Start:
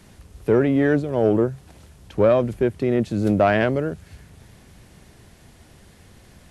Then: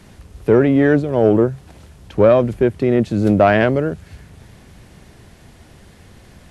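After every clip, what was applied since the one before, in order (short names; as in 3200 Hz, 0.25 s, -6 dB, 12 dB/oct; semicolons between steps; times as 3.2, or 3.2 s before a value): high shelf 5600 Hz -5 dB; gain +5 dB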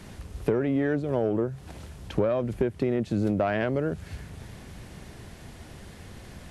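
compressor 8:1, threshold -22 dBFS, peak gain reduction 15 dB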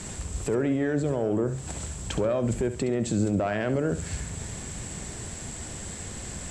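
synth low-pass 7700 Hz, resonance Q 15; limiter -22.5 dBFS, peak gain reduction 11 dB; on a send: flutter echo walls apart 11.6 m, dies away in 0.35 s; on the sum: gain +5 dB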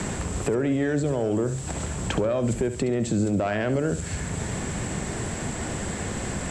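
three-band squash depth 70%; gain +1.5 dB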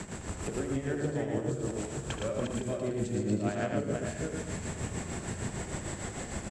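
regenerating reverse delay 0.254 s, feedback 45%, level -1.5 dB; tremolo 6.6 Hz, depth 77%; loudspeakers at several distances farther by 27 m -10 dB, 39 m -4 dB; gain -8.5 dB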